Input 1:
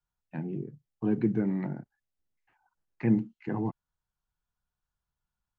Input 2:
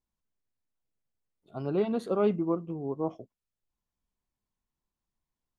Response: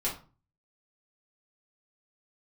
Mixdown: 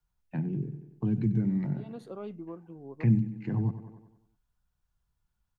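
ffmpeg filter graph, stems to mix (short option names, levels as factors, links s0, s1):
-filter_complex "[0:a]lowshelf=f=180:g=9.5,volume=1.26,asplit=3[s0][s1][s2];[s1]volume=0.188[s3];[1:a]volume=0.299[s4];[s2]apad=whole_len=246367[s5];[s4][s5]sidechaincompress=threshold=0.02:ratio=8:attack=16:release=187[s6];[s3]aecho=0:1:94|188|282|376|470|564|658:1|0.49|0.24|0.118|0.0576|0.0282|0.0138[s7];[s0][s6][s7]amix=inputs=3:normalize=0,acrossover=split=180|3000[s8][s9][s10];[s9]acompressor=threshold=0.0126:ratio=4[s11];[s8][s11][s10]amix=inputs=3:normalize=0"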